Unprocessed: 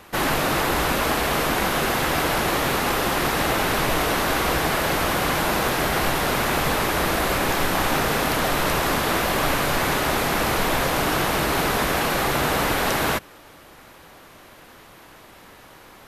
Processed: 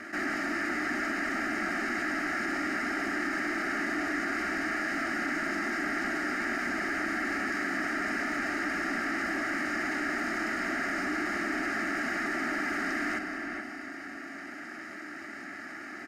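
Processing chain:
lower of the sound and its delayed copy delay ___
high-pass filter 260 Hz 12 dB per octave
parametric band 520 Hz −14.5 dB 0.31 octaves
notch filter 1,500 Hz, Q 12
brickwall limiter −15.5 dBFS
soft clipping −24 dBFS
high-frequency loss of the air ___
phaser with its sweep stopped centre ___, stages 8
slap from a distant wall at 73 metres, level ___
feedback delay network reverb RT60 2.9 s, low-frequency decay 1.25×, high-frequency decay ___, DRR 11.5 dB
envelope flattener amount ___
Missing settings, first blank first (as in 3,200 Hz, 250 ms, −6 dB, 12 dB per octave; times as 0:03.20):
0.58 ms, 140 metres, 690 Hz, −10 dB, 0.95×, 50%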